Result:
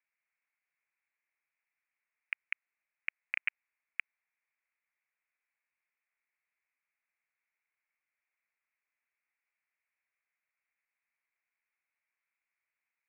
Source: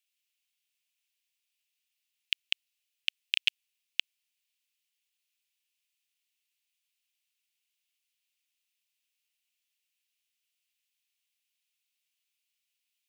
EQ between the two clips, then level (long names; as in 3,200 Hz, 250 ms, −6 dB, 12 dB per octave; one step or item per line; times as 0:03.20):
high-pass filter 940 Hz
Butterworth low-pass 2,300 Hz 72 dB per octave
high-frequency loss of the air 420 metres
+12.0 dB